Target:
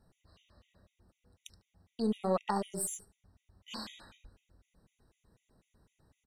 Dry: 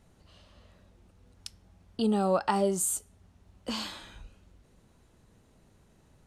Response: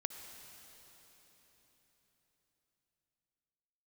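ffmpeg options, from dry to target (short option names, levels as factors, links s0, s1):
-filter_complex "[0:a]aeval=exprs='0.211*(cos(1*acos(clip(val(0)/0.211,-1,1)))-cos(1*PI/2))+0.00473*(cos(7*acos(clip(val(0)/0.211,-1,1)))-cos(7*PI/2))+0.00335*(cos(8*acos(clip(val(0)/0.211,-1,1)))-cos(8*PI/2))':c=same,asplit=2[s0][s1];[s1]adelay=74,lowpass=f=1800:p=1,volume=0.316,asplit=2[s2][s3];[s3]adelay=74,lowpass=f=1800:p=1,volume=0.37,asplit=2[s4][s5];[s5]adelay=74,lowpass=f=1800:p=1,volume=0.37,asplit=2[s6][s7];[s7]adelay=74,lowpass=f=1800:p=1,volume=0.37[s8];[s0][s2][s4][s6][s8]amix=inputs=5:normalize=0,afftfilt=real='re*gt(sin(2*PI*4*pts/sr)*(1-2*mod(floor(b*sr/1024/1900),2)),0)':imag='im*gt(sin(2*PI*4*pts/sr)*(1-2*mod(floor(b*sr/1024/1900),2)),0)':win_size=1024:overlap=0.75,volume=0.631"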